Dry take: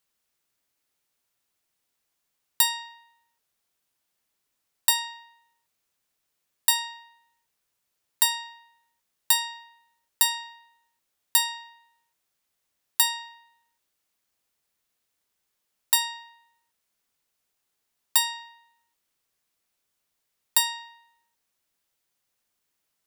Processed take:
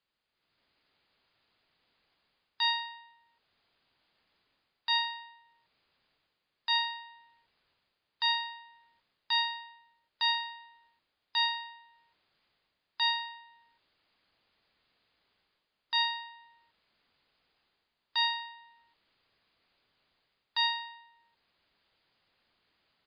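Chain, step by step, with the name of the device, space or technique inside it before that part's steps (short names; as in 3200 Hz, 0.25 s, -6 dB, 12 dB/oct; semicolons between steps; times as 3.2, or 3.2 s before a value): low-bitrate web radio (AGC gain up to 11.5 dB; limiter -12 dBFS, peak gain reduction 11 dB; gain -1.5 dB; MP3 40 kbps 11025 Hz)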